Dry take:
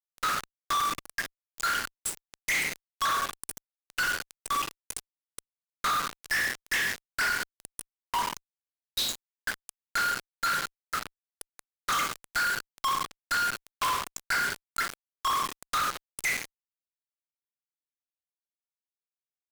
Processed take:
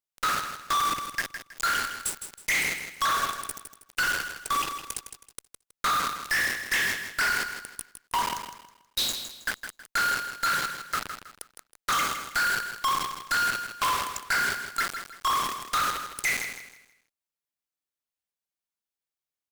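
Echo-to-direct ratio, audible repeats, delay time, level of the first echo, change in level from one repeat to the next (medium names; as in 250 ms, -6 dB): -8.5 dB, 3, 160 ms, -9.0 dB, -10.0 dB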